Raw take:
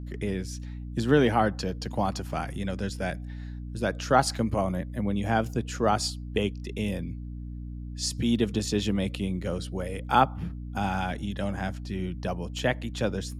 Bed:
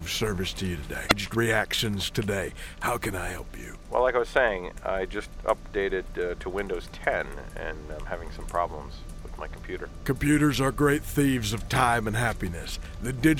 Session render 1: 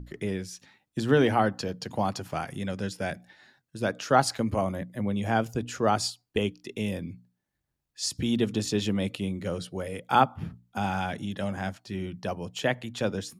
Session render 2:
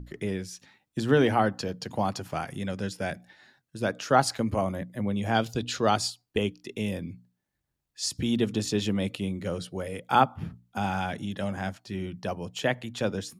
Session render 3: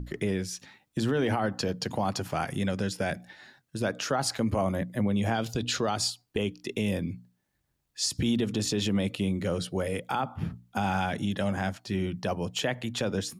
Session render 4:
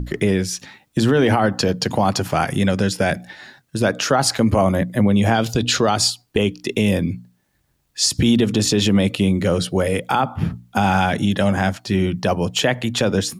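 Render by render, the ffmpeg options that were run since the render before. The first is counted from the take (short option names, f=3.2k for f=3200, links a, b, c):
-af "bandreject=f=60:t=h:w=6,bandreject=f=120:t=h:w=6,bandreject=f=180:t=h:w=6,bandreject=f=240:t=h:w=6,bandreject=f=300:t=h:w=6"
-filter_complex "[0:a]asettb=1/sr,asplit=3[a][b][c];[a]atrim=end=5.344[d];[b]atrim=start=5.34:end=5.97,asetpts=PTS-STARTPTS,afade=t=in:d=0.004:c=qsin,afade=t=out:st=0.626:d=0.004:c=qsin,equalizer=f=3.9k:w=1.7:g=14[e];[c]atrim=start=5.966[f];[d][e]acrossfade=d=0.004:c1=hsin:c2=qsin[g];[g][f]acrossfade=d=0.004:c1=qsin:c2=hsin"
-filter_complex "[0:a]asplit=2[a][b];[b]acompressor=threshold=-31dB:ratio=6,volume=-2dB[c];[a][c]amix=inputs=2:normalize=0,alimiter=limit=-18dB:level=0:latency=1:release=49"
-af "volume=11dB"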